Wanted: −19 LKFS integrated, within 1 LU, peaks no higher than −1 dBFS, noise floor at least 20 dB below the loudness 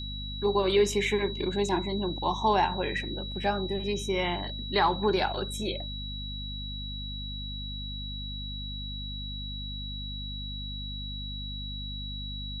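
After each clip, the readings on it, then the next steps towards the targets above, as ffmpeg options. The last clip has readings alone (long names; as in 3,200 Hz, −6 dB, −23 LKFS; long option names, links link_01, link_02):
mains hum 50 Hz; hum harmonics up to 250 Hz; level of the hum −36 dBFS; interfering tone 3,900 Hz; level of the tone −38 dBFS; integrated loudness −31.0 LKFS; sample peak −12.5 dBFS; target loudness −19.0 LKFS
→ -af "bandreject=frequency=50:width_type=h:width=6,bandreject=frequency=100:width_type=h:width=6,bandreject=frequency=150:width_type=h:width=6,bandreject=frequency=200:width_type=h:width=6,bandreject=frequency=250:width_type=h:width=6"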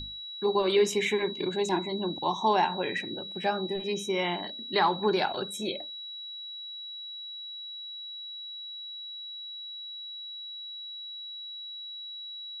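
mains hum none found; interfering tone 3,900 Hz; level of the tone −38 dBFS
→ -af "bandreject=frequency=3900:width=30"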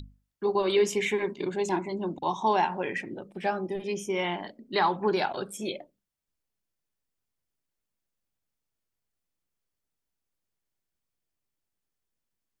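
interfering tone none found; integrated loudness −29.0 LKFS; sample peak −13.0 dBFS; target loudness −19.0 LKFS
→ -af "volume=10dB"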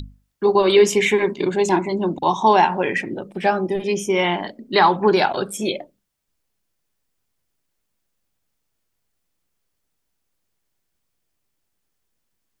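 integrated loudness −19.0 LKFS; sample peak −3.0 dBFS; background noise floor −75 dBFS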